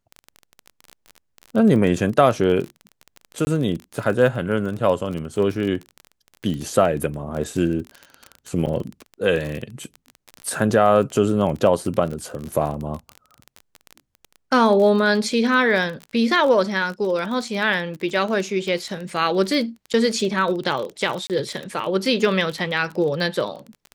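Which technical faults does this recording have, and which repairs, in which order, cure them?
crackle 24 per s -26 dBFS
3.45–3.47 s: dropout 20 ms
8.66–8.67 s: dropout 8 ms
19.93–19.94 s: dropout 8.4 ms
21.27–21.30 s: dropout 28 ms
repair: de-click; interpolate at 3.45 s, 20 ms; interpolate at 8.66 s, 8 ms; interpolate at 19.93 s, 8.4 ms; interpolate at 21.27 s, 28 ms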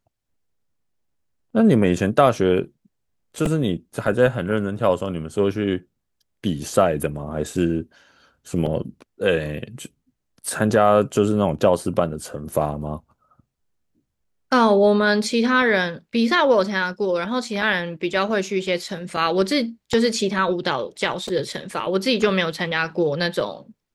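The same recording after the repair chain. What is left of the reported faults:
nothing left

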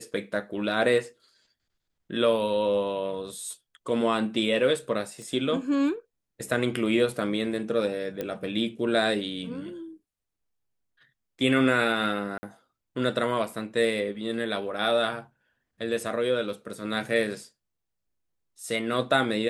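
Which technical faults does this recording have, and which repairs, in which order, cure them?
5.22 s: pop -31 dBFS
8.21 s: pop -18 dBFS
12.38–12.43 s: dropout 50 ms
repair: de-click; interpolate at 12.38 s, 50 ms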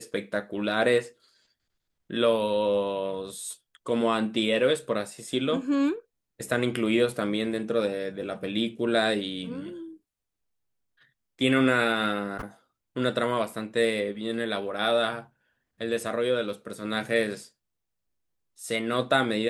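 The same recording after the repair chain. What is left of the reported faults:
nothing left

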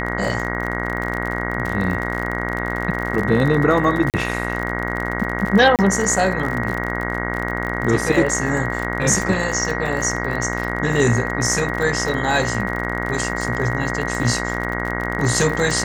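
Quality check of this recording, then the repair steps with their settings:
buzz 60 Hz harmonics 36 -25 dBFS
crackle 43 per s -24 dBFS
whine 1.9 kHz -27 dBFS
4.10–4.14 s: dropout 38 ms
5.76–5.79 s: dropout 28 ms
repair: de-click; band-stop 1.9 kHz, Q 30; de-hum 60 Hz, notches 36; interpolate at 4.10 s, 38 ms; interpolate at 5.76 s, 28 ms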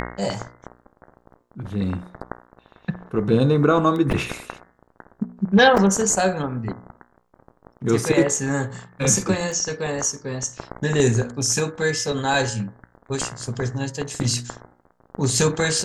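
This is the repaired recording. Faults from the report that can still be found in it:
nothing left

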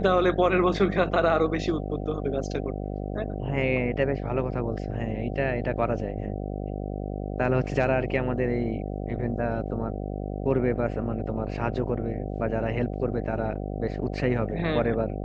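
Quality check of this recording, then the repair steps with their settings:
buzz 50 Hz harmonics 15 -32 dBFS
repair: de-hum 50 Hz, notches 15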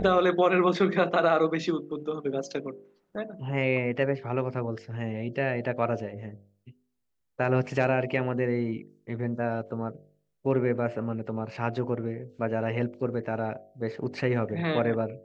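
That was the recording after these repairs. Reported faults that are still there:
nothing left

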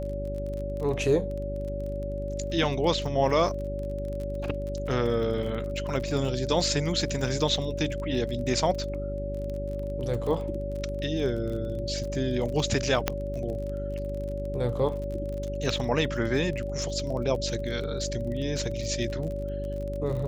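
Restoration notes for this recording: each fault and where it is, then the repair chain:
crackle 30 per s -34 dBFS
hum 50 Hz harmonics 8 -34 dBFS
whine 570 Hz -33 dBFS
13.08 s: pop -8 dBFS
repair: de-click; de-hum 50 Hz, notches 8; band-stop 570 Hz, Q 30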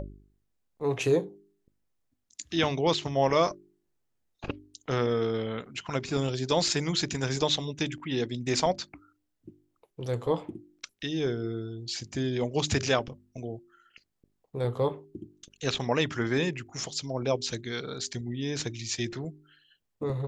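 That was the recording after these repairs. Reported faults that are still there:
nothing left

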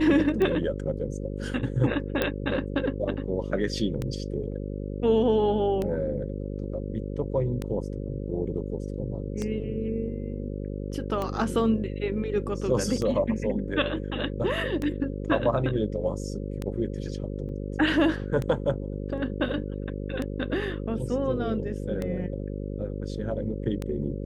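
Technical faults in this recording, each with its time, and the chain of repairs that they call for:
buzz 50 Hz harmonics 11 -33 dBFS
tick 33 1/3 rpm -17 dBFS
2.22 s: pop
17.49 s: dropout 2.4 ms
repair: de-click; de-hum 50 Hz, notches 11; interpolate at 17.49 s, 2.4 ms

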